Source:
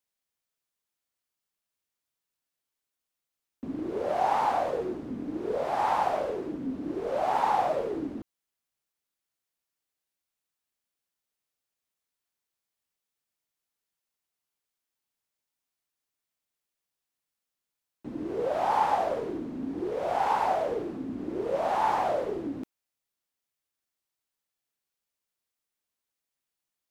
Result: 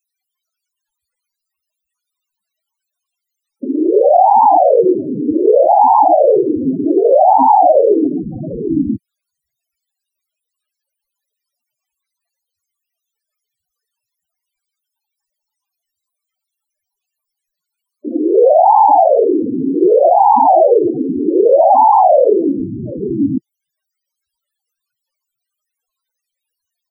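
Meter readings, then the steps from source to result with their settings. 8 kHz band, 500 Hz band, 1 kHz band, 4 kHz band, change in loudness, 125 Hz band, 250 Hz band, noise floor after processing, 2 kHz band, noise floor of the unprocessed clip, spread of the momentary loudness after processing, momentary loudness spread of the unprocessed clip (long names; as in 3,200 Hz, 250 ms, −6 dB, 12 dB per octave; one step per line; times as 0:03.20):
can't be measured, +20.5 dB, +18.0 dB, below −25 dB, +18.5 dB, +16.0 dB, +19.0 dB, −81 dBFS, below −25 dB, below −85 dBFS, 13 LU, 11 LU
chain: multiband delay without the direct sound highs, lows 740 ms, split 300 Hz
spectral peaks only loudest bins 8
boost into a limiter +26 dB
level −1 dB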